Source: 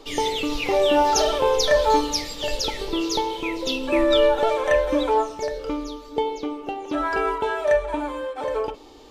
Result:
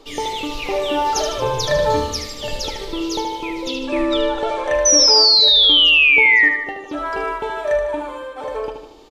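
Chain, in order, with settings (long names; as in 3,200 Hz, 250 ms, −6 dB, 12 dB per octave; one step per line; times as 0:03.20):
0:01.37–0:02.61: sub-octave generator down 2 octaves, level 0 dB
0:03.68–0:04.74: low-pass filter 9,300 Hz 12 dB per octave
0:04.85–0:06.49: sound drawn into the spectrogram fall 1,800–6,100 Hz −12 dBFS
repeating echo 76 ms, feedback 52%, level −7 dB
level −1 dB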